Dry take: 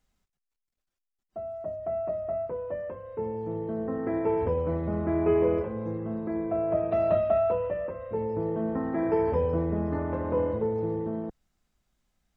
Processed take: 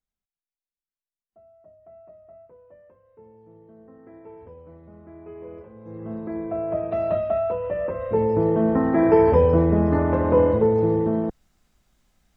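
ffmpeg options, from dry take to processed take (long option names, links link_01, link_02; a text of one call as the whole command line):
ffmpeg -i in.wav -af "volume=9.5dB,afade=type=in:start_time=5.35:duration=0.49:silence=0.446684,afade=type=in:start_time=5.84:duration=0.27:silence=0.281838,afade=type=in:start_time=7.61:duration=0.43:silence=0.354813" out.wav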